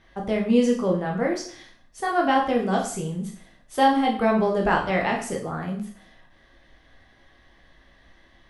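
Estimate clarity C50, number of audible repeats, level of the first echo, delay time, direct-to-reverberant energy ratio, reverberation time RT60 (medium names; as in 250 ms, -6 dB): 8.0 dB, no echo, no echo, no echo, -0.5 dB, 0.50 s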